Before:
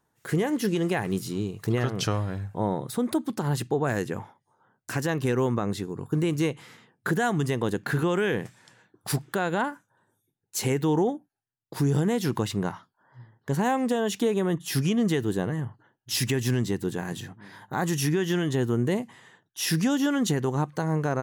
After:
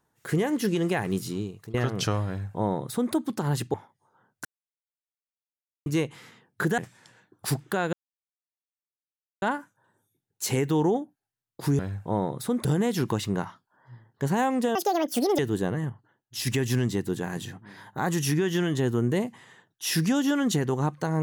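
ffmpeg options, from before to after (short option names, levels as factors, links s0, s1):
-filter_complex "[0:a]asplit=13[s0][s1][s2][s3][s4][s5][s6][s7][s8][s9][s10][s11][s12];[s0]atrim=end=1.74,asetpts=PTS-STARTPTS,afade=t=out:st=1.3:d=0.44:silence=0.0891251[s13];[s1]atrim=start=1.74:end=3.742,asetpts=PTS-STARTPTS,afade=t=in:d=0.004:c=hsin:silence=0.0891251[s14];[s2]atrim=start=4.198:end=4.91,asetpts=PTS-STARTPTS,afade=t=out:st=0.708:d=0.004:c=hsin[s15];[s3]atrim=start=4.91:end=6.32,asetpts=PTS-STARTPTS,volume=0[s16];[s4]atrim=start=6.32:end=7.242,asetpts=PTS-STARTPTS,afade=t=in:d=0.004:c=hsin[s17];[s5]atrim=start=8.398:end=9.55,asetpts=PTS-STARTPTS,afade=t=out:st=1.148:d=0.004:c=hsin,apad=pad_dur=1.49[s18];[s6]atrim=start=9.55:end=11.922,asetpts=PTS-STARTPTS,afade=t=in:d=0.004:c=hsin[s19];[s7]atrim=start=2.278:end=3.142[s20];[s8]atrim=start=11.918:end=14.024[s21];[s9]atrim=start=14.02:end=15.14,asetpts=PTS-STARTPTS,asetrate=77616,aresample=44100[s22];[s10]atrim=start=15.136:end=15.652[s23];[s11]atrim=start=15.648:end=16.222,asetpts=PTS-STARTPTS,volume=0.562[s24];[s12]atrim=start=16.218[s25];[s13][s14]concat=n=2:v=0:a=1[s26];[s15][s16][s17]concat=n=3:v=0:a=1[s27];[s26][s27]acrossfade=d=0.004:c1=hsin:c2=hsin[s28];[s18][s19]concat=n=2:v=0:a=1[s29];[s28][s29]acrossfade=d=0.004:c1=hsin:c2=hsin[s30];[s30][s20]acrossfade=d=0.004:c1=hsin:c2=hsin[s31];[s31][s21]acrossfade=d=0.004:c1=hsin:c2=hsin[s32];[s32][s22]acrossfade=d=0.004:c1=hsin:c2=hsin[s33];[s33][s23]acrossfade=d=0.004:c1=hsin:c2=hsin[s34];[s34][s24]acrossfade=d=0.004:c1=hsin:c2=hsin[s35];[s35][s25]acrossfade=d=0.004:c1=hsin:c2=hsin"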